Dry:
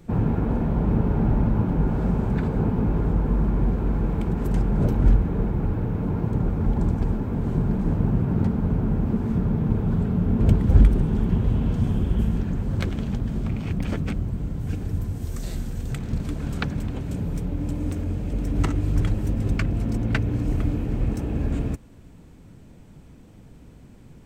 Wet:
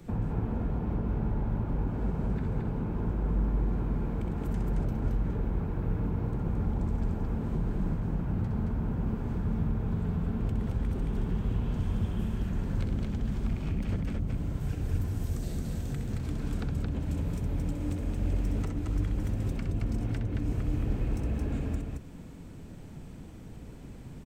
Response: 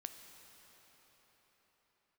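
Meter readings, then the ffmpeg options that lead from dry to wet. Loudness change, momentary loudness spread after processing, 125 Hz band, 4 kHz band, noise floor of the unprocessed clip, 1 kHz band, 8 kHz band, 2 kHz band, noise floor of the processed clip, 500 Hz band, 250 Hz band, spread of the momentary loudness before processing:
−8.0 dB, 4 LU, −7.5 dB, −8.0 dB, −47 dBFS, −7.5 dB, can't be measured, −9.5 dB, −45 dBFS, −8.5 dB, −8.5 dB, 8 LU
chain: -filter_complex "[0:a]alimiter=limit=-12dB:level=0:latency=1:release=220,acrossover=split=82|740[link_01][link_02][link_03];[link_01]acompressor=threshold=-33dB:ratio=4[link_04];[link_02]acompressor=threshold=-36dB:ratio=4[link_05];[link_03]acompressor=threshold=-52dB:ratio=4[link_06];[link_04][link_05][link_06]amix=inputs=3:normalize=0,aecho=1:1:64.14|221.6:0.447|0.708"

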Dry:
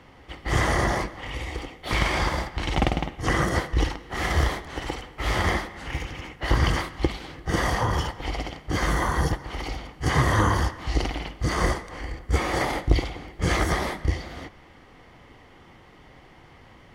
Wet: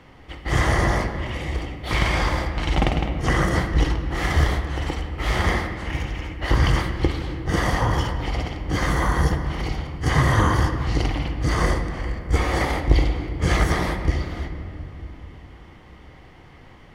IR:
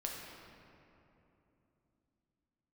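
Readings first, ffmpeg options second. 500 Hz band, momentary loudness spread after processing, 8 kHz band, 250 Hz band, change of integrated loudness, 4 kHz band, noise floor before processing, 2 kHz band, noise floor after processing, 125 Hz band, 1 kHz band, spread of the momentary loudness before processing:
+2.0 dB, 10 LU, 0.0 dB, +3.5 dB, +3.0 dB, +1.0 dB, −51 dBFS, +2.0 dB, −46 dBFS, +4.5 dB, +1.5 dB, 11 LU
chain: -filter_complex "[0:a]asplit=2[link_01][link_02];[link_02]equalizer=frequency=2400:width=0.61:gain=4.5[link_03];[1:a]atrim=start_sample=2205,lowshelf=frequency=390:gain=9[link_04];[link_03][link_04]afir=irnorm=-1:irlink=0,volume=-5.5dB[link_05];[link_01][link_05]amix=inputs=2:normalize=0,volume=-3dB"

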